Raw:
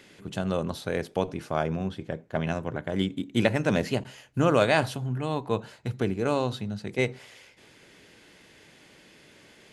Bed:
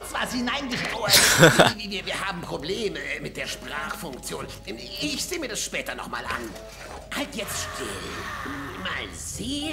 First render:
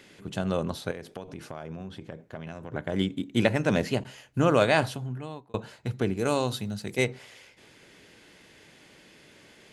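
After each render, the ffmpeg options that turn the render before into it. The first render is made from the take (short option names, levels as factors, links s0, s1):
-filter_complex "[0:a]asettb=1/sr,asplit=3[s0][s1][s2];[s0]atrim=end=0.914[s3];[s1]atrim=start=0.91:end=2.73,asetpts=PTS-STARTPTS,afade=t=in:d=0.004:c=qsin,afade=t=out:st=1.816:d=0.004:c=qsin,acompressor=threshold=0.0178:ratio=5:attack=3.2:release=140:knee=1:detection=peak[s4];[s2]atrim=start=2.726[s5];[s3][s4]acrossfade=d=0.004:c1=hsin:c2=qsin[s6];[s6][s5]acrossfade=d=0.004:c1=qsin:c2=hsin,asplit=3[s7][s8][s9];[s7]afade=t=out:st=6.16:d=0.02[s10];[s8]aemphasis=mode=production:type=50fm,afade=t=in:st=6.16:d=0.02,afade=t=out:st=7.03:d=0.02[s11];[s9]afade=t=in:st=7.03:d=0.02[s12];[s10][s11][s12]amix=inputs=3:normalize=0,asplit=2[s13][s14];[s13]atrim=end=5.54,asetpts=PTS-STARTPTS,afade=t=out:st=4.83:d=0.71[s15];[s14]atrim=start=5.54,asetpts=PTS-STARTPTS,afade=t=in:d=0.004:c=hsin[s16];[s15][s16]concat=n=2:v=0:a=1"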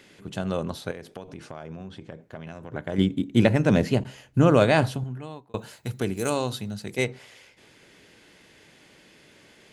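-filter_complex "[0:a]asettb=1/sr,asplit=3[s0][s1][s2];[s0]atrim=end=1.374[s3];[s1]atrim=start=1.37:end=2.21,asetpts=PTS-STARTPTS,afade=t=in:d=0.004:c=qsin,afade=t=out:st=0.836:d=0.004:c=qsin,lowpass=f=9600:w=0.5412,lowpass=f=9600:w=1.3066[s4];[s2]atrim=start=2.206[s5];[s3][s4]acrossfade=d=0.004:c1=hsin:c2=qsin[s6];[s6][s5]acrossfade=d=0.004:c1=qsin:c2=hsin,asettb=1/sr,asplit=3[s7][s8][s9];[s7]atrim=end=2.984[s10];[s8]atrim=start=2.98:end=5.04,asetpts=PTS-STARTPTS,afade=t=in:d=0.004:c=qsin,afade=t=out:st=2.056:d=0.004:c=qsin,lowshelf=f=430:g=7.5[s11];[s9]atrim=start=5.036[s12];[s10][s11]acrossfade=d=0.004:c1=hsin:c2=qsin[s13];[s13][s12]acrossfade=d=0.004:c1=qsin:c2=hsin,asettb=1/sr,asplit=3[s14][s15][s16];[s14]atrim=end=5.574[s17];[s15]atrim=start=5.57:end=6.3,asetpts=PTS-STARTPTS,afade=t=in:d=0.004:c=qsin,afade=t=out:st=0.726:d=0.004:c=qsin,aemphasis=mode=production:type=50fm[s18];[s16]atrim=start=6.296[s19];[s17][s18]acrossfade=d=0.004:c1=hsin:c2=qsin[s20];[s20][s19]acrossfade=d=0.004:c1=qsin:c2=hsin"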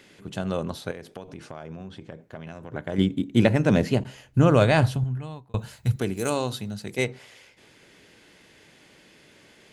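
-filter_complex "[0:a]asettb=1/sr,asplit=3[s0][s1][s2];[s0]atrim=end=4.054[s3];[s1]atrim=start=4.05:end=5.96,asetpts=PTS-STARTPTS,afade=t=in:d=0.004:c=qsin,afade=t=out:st=1.906:d=0.004:c=qsin,asubboost=boost=9.5:cutoff=140[s4];[s2]atrim=start=5.956[s5];[s3][s4]acrossfade=d=0.004:c1=hsin:c2=qsin[s6];[s6][s5]acrossfade=d=0.004:c1=qsin:c2=hsin"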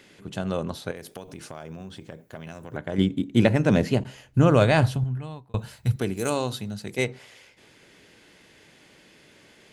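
-filter_complex "[0:a]asettb=1/sr,asplit=3[s0][s1][s2];[s0]atrim=end=0.964[s3];[s1]atrim=start=0.96:end=2.77,asetpts=PTS-STARTPTS,afade=t=in:d=0.004:c=qsin,afade=t=out:st=1.806:d=0.004:c=qsin,aemphasis=mode=production:type=50fm[s4];[s2]atrim=start=2.766[s5];[s3][s4]acrossfade=d=0.004:c1=hsin:c2=qsin[s6];[s6][s5]acrossfade=d=0.004:c1=qsin:c2=hsin,asettb=1/sr,asplit=3[s7][s8][s9];[s7]atrim=end=4.984[s10];[s8]atrim=start=4.98:end=6.11,asetpts=PTS-STARTPTS,afade=t=in:d=0.004:c=qsin,afade=t=out:st=1.126:d=0.004:c=qsin,bandreject=f=6800:w=12[s11];[s9]atrim=start=6.106[s12];[s10][s11]acrossfade=d=0.004:c1=hsin:c2=qsin[s13];[s13][s12]acrossfade=d=0.004:c1=qsin:c2=hsin"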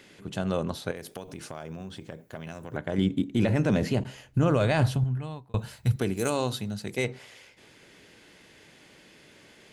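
-af "alimiter=limit=0.178:level=0:latency=1:release=13"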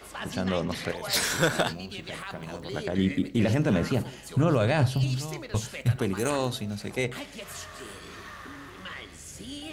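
-filter_complex "[1:a]volume=0.316[s0];[0:a][s0]amix=inputs=2:normalize=0"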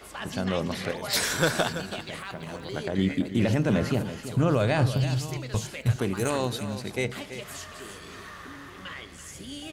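-af "aecho=1:1:332:0.266"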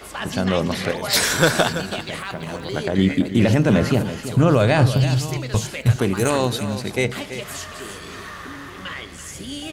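-af "volume=2.37"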